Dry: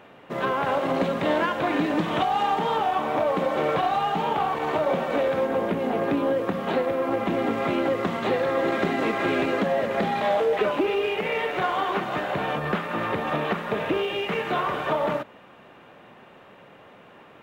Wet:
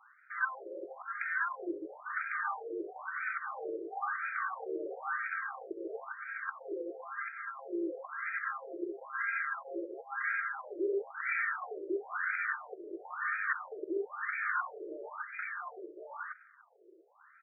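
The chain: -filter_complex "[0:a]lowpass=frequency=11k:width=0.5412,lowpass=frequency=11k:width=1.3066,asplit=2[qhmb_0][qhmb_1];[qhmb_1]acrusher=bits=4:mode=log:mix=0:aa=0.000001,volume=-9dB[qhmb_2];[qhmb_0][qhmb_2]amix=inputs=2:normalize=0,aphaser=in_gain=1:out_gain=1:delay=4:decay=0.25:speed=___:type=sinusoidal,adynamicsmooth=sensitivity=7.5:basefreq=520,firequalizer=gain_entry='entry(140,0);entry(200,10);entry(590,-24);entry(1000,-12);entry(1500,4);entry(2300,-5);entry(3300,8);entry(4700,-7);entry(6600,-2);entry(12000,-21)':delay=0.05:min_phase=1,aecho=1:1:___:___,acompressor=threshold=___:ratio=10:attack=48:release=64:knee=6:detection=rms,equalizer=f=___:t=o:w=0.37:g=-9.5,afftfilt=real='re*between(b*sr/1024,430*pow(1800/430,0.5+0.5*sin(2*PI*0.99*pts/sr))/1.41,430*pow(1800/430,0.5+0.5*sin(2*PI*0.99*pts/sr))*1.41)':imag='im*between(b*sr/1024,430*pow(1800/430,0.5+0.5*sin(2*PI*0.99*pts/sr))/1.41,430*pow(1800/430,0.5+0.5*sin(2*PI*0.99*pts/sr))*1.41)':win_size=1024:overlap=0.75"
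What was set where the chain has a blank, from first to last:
0.55, 1102, 0.531, -26dB, 83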